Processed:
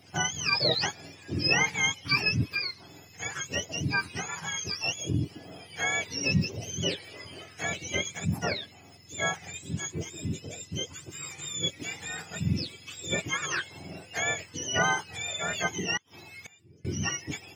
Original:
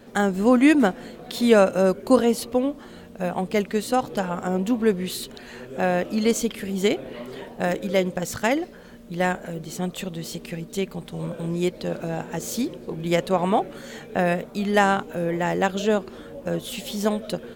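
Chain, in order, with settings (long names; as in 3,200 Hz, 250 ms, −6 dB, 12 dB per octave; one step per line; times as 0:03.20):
frequency axis turned over on the octave scale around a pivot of 1,100 Hz
0:15.97–0:16.85: gate with flip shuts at −26 dBFS, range −25 dB
level −4.5 dB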